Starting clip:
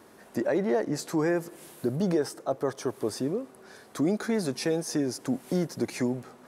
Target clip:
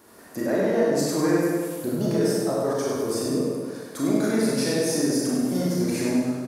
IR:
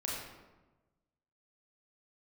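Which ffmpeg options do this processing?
-filter_complex "[0:a]highshelf=f=6300:g=10,aecho=1:1:100|200|300|400|500|600|700:0.531|0.292|0.161|0.0883|0.0486|0.0267|0.0147[s0];[1:a]atrim=start_sample=2205[s1];[s0][s1]afir=irnorm=-1:irlink=0"

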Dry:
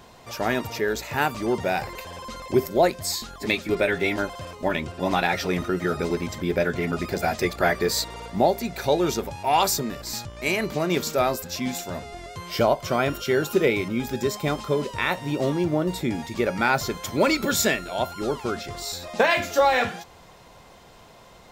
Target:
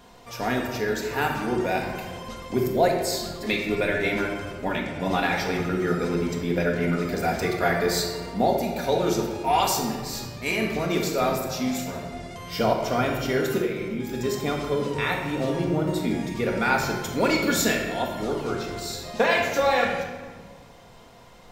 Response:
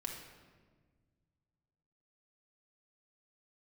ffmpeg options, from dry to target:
-filter_complex "[0:a]asettb=1/sr,asplit=3[s0][s1][s2];[s0]atrim=end=13.614[s3];[s1]atrim=start=13.61:end=14.14,asetpts=PTS-STARTPTS,afade=t=in:d=0.004:c=qsin,afade=t=out:st=0.526:d=0.004:c=qsin,acompressor=threshold=0.0398:ratio=6[s4];[s2]atrim=start=14.136[s5];[s3][s4]acrossfade=d=0.004:c1=hsin:c2=qsin[s6];[s6][s5]acrossfade=d=0.004:c1=qsin:c2=hsin[s7];[1:a]atrim=start_sample=2205[s8];[s7][s8]afir=irnorm=-1:irlink=0"

